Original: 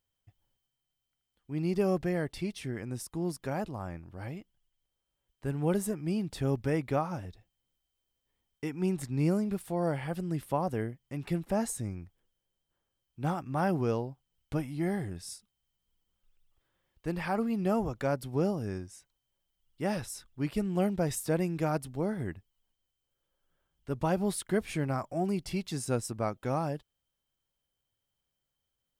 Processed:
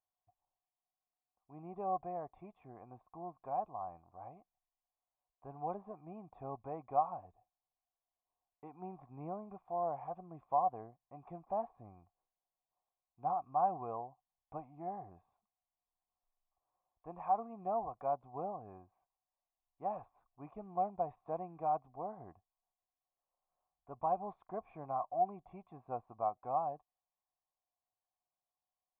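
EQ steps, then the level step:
formant resonators in series a
+7.0 dB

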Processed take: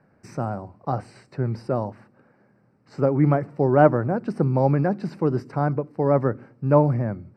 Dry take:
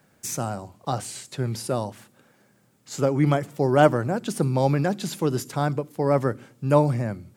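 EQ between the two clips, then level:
moving average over 13 samples
high-frequency loss of the air 58 metres
+2.0 dB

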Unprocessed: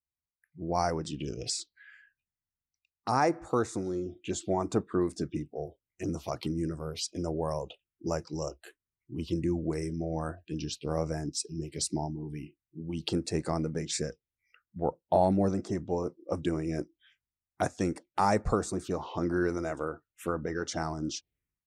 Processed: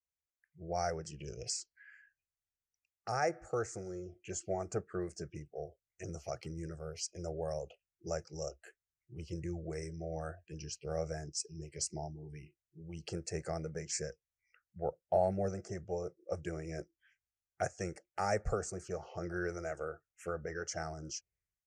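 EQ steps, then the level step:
low-pass with resonance 6,400 Hz, resonance Q 2.1
phaser with its sweep stopped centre 1,000 Hz, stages 6
−4.0 dB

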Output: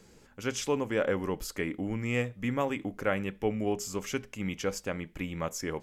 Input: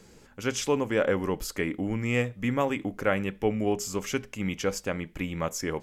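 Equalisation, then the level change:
no EQ move
−3.5 dB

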